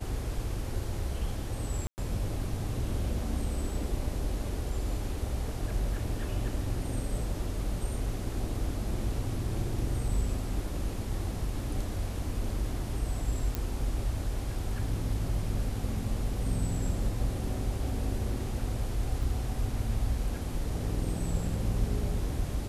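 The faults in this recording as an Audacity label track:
1.870000	1.980000	drop-out 109 ms
13.550000	13.550000	click
19.230000	19.230000	drop-out 3.4 ms

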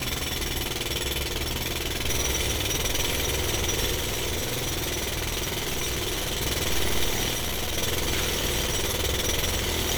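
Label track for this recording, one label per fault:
3.940000	6.430000	clipping −24.5 dBFS
7.330000	7.790000	clipping −25 dBFS

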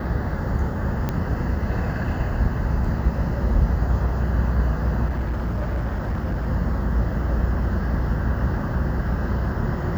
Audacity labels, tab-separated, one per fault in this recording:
1.090000	1.090000	click −12 dBFS
5.070000	6.480000	clipping −20.5 dBFS

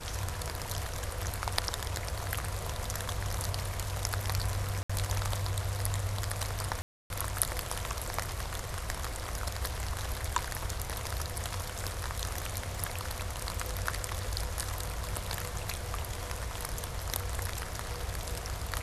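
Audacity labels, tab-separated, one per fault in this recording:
4.830000	4.890000	drop-out 65 ms
6.820000	7.100000	drop-out 281 ms

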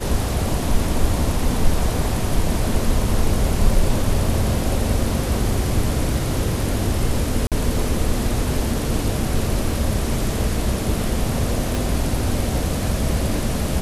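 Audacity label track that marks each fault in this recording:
7.470000	7.520000	drop-out 47 ms
11.750000	11.750000	click

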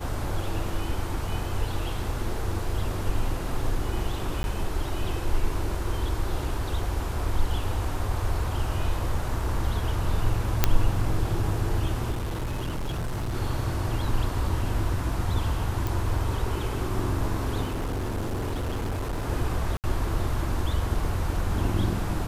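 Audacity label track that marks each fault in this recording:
4.430000	4.440000	drop-out
10.640000	10.640000	click −3 dBFS
12.110000	13.350000	clipping −26 dBFS
15.870000	15.870000	click
17.640000	19.270000	clipping −25.5 dBFS
19.770000	19.840000	drop-out 68 ms

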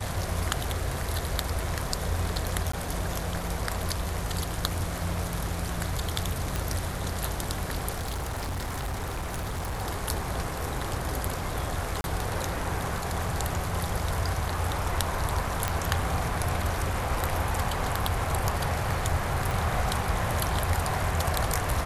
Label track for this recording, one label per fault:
2.720000	2.730000	drop-out 14 ms
6.560000	6.560000	click
7.940000	9.820000	clipping −28 dBFS
12.010000	12.040000	drop-out 31 ms
15.680000	15.680000	click −10 dBFS
19.510000	19.510000	click

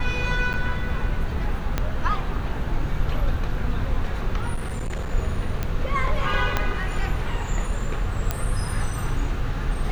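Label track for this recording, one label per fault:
0.530000	0.540000	drop-out 8.6 ms
1.780000	1.780000	click −9 dBFS
4.540000	5.130000	clipping −24 dBFS
5.630000	5.630000	click −12 dBFS
6.570000	6.570000	click −7 dBFS
8.310000	8.310000	click −9 dBFS

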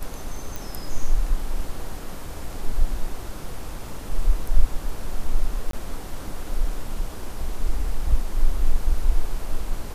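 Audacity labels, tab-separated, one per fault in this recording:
0.560000	0.560000	click
5.710000	5.730000	drop-out 23 ms

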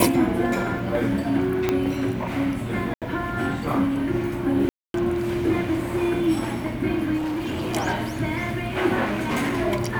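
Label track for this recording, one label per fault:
1.690000	1.690000	click −7 dBFS
2.940000	3.020000	drop-out 77 ms
4.690000	4.940000	drop-out 252 ms
7.170000	7.760000	clipping −24 dBFS
9.040000	9.620000	clipping −20.5 dBFS

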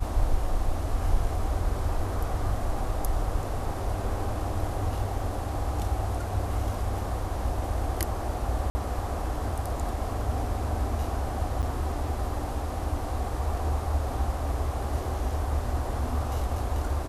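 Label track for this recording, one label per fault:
8.700000	8.750000	drop-out 50 ms
11.620000	11.630000	drop-out 8.3 ms

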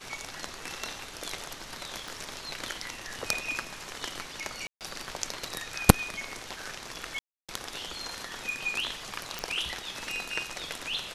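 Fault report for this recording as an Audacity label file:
2.080000	2.080000	click
4.670000	4.810000	drop-out 138 ms
7.190000	7.490000	drop-out 296 ms
9.390000	9.390000	click

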